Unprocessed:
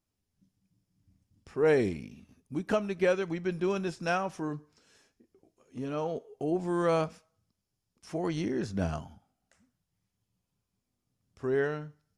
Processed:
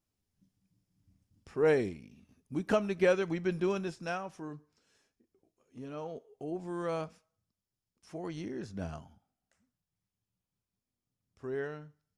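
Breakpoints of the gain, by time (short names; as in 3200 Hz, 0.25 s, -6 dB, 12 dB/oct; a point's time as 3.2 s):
1.69 s -1.5 dB
2 s -9.5 dB
2.63 s 0 dB
3.57 s 0 dB
4.22 s -8 dB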